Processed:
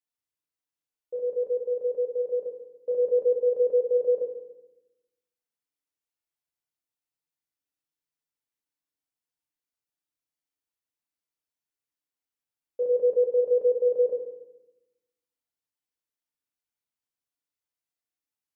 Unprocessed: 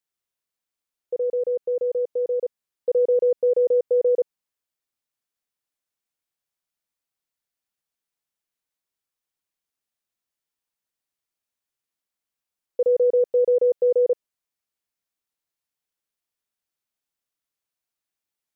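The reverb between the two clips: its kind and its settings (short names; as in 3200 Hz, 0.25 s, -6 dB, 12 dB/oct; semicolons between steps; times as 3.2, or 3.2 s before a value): FDN reverb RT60 0.95 s, low-frequency decay 1.45×, high-frequency decay 0.8×, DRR -0.5 dB; gain -9.5 dB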